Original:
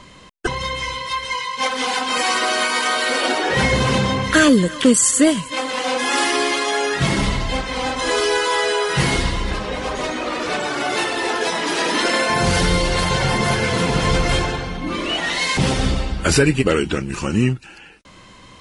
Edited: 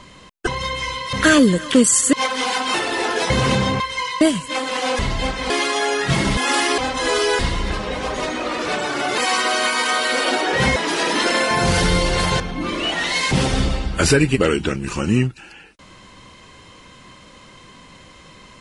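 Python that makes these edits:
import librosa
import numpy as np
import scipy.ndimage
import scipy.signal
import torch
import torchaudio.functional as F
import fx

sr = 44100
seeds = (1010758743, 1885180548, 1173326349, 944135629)

y = fx.edit(x, sr, fx.swap(start_s=1.13, length_s=0.41, other_s=4.23, other_length_s=1.0),
    fx.swap(start_s=2.15, length_s=1.58, other_s=10.99, other_length_s=0.56),
    fx.swap(start_s=6.01, length_s=0.41, other_s=7.29, other_length_s=0.51),
    fx.cut(start_s=8.41, length_s=0.79),
    fx.cut(start_s=13.19, length_s=1.47), tone=tone)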